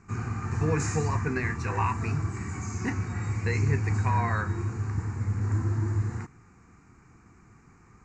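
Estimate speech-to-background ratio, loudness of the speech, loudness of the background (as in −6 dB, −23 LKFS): −2.0 dB, −32.5 LKFS, −30.5 LKFS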